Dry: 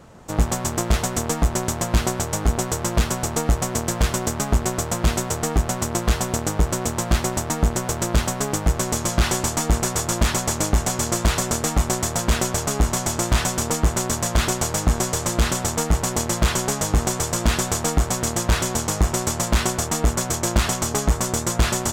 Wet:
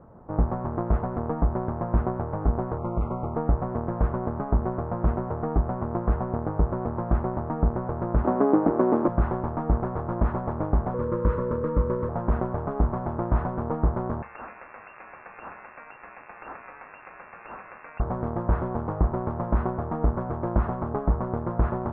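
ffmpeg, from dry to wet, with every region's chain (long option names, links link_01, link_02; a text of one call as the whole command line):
ffmpeg -i in.wav -filter_complex "[0:a]asettb=1/sr,asplit=3[link_01][link_02][link_03];[link_01]atrim=end=2.784[link_04];[link_02]atrim=start=2.78:end=3.35,asetpts=PTS-STARTPTS,afade=type=in:duration=0.004:curve=qsin,afade=type=out:start_time=0.566:duration=0.004:curve=qsin,volume=17dB,asoftclip=hard,volume=-17dB,asuperstop=centerf=1700:order=20:qfactor=2.8[link_05];[link_03]atrim=start=3.346[link_06];[link_04][link_05]acrossfade=duration=0.004:curve1=hsin:curve2=qsin[link_07];[link_07][link_06]acrossfade=duration=0.004:curve1=qsin:curve2=hsin,asettb=1/sr,asplit=3[link_08][link_09][link_10];[link_08]atrim=end=8.244[link_11];[link_09]atrim=start=8.24:end=9.08,asetpts=PTS-STARTPTS,afade=type=in:duration=0.004:curve=qsin,afade=type=out:start_time=0.836:duration=0.004:curve=qsin,acontrast=36,highpass=frequency=290:width_type=q:width=2.8[link_12];[link_10]atrim=start=9.076[link_13];[link_11][link_12]acrossfade=duration=0.004:curve1=hsin:curve2=qsin[link_14];[link_14][link_13]acrossfade=duration=0.004:curve1=qsin:curve2=hsin,asettb=1/sr,asplit=3[link_15][link_16][link_17];[link_15]atrim=end=10.944[link_18];[link_16]atrim=start=10.94:end=12.09,asetpts=PTS-STARTPTS,afade=type=in:duration=0.004:curve=qsin,afade=type=out:start_time=1.146:duration=0.004:curve=qsin,asuperstop=centerf=740:order=8:qfactor=2.6,aeval=exprs='val(0)+0.0562*sin(2*PI*490*n/s)':channel_layout=same[link_19];[link_17]atrim=start=12.086[link_20];[link_18][link_19]acrossfade=duration=0.004:curve1=hsin:curve2=qsin[link_21];[link_21][link_20]acrossfade=duration=0.004:curve1=qsin:curve2=hsin,asettb=1/sr,asplit=3[link_22][link_23][link_24];[link_22]atrim=end=14.224[link_25];[link_23]atrim=start=14.22:end=18,asetpts=PTS-STARTPTS,afade=type=in:duration=0.004:curve=qsin,afade=type=out:start_time=3.776:duration=0.004:curve=qsin,acompressor=threshold=-21dB:ratio=3:attack=3.2:release=140:knee=1:detection=peak,lowpass=frequency=2400:width_type=q:width=0.5098,lowpass=frequency=2400:width_type=q:width=0.6013,lowpass=frequency=2400:width_type=q:width=0.9,lowpass=frequency=2400:width_type=q:width=2.563,afreqshift=-2800[link_26];[link_24]atrim=start=17.996[link_27];[link_25][link_26]acrossfade=duration=0.004:curve1=hsin:curve2=qsin[link_28];[link_28][link_27]acrossfade=duration=0.004:curve1=qsin:curve2=hsin,lowpass=frequency=1200:width=0.5412,lowpass=frequency=1200:width=1.3066,bandreject=frequency=69.59:width_type=h:width=4,bandreject=frequency=139.18:width_type=h:width=4,bandreject=frequency=208.77:width_type=h:width=4,volume=-3dB" out.wav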